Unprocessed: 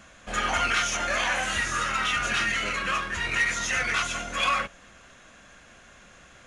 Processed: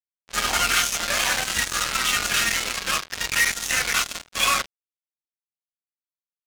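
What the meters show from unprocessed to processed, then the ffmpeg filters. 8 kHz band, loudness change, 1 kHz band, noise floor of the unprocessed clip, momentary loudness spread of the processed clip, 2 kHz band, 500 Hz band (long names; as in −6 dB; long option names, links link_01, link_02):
+9.0 dB, +3.5 dB, 0.0 dB, −52 dBFS, 5 LU, +1.5 dB, 0.0 dB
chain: -af "acrusher=bits=3:mix=0:aa=0.5,adynamicsmooth=sensitivity=7:basefreq=4000,highshelf=frequency=3800:gain=12"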